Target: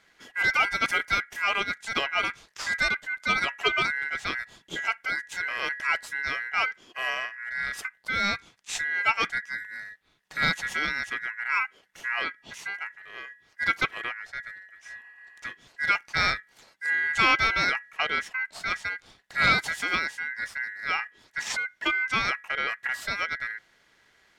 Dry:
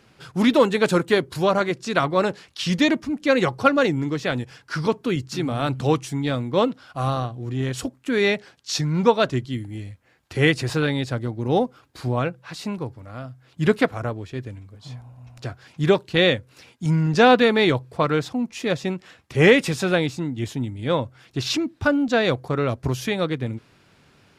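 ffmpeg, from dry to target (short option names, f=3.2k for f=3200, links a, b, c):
-af "asoftclip=type=tanh:threshold=-5.5dB,aeval=exprs='val(0)*sin(2*PI*1800*n/s)':c=same,volume=-3.5dB"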